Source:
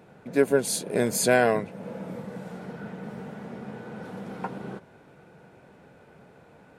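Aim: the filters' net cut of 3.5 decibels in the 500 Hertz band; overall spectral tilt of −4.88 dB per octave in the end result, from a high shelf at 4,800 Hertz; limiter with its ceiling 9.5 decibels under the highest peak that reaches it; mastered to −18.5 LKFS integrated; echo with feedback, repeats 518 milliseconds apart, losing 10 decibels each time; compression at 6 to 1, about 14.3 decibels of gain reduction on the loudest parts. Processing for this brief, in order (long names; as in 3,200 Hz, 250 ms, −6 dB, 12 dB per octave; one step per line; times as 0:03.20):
parametric band 500 Hz −4.5 dB
high-shelf EQ 4,800 Hz +5.5 dB
downward compressor 6 to 1, threshold −33 dBFS
brickwall limiter −30.5 dBFS
repeating echo 518 ms, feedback 32%, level −10 dB
level +22.5 dB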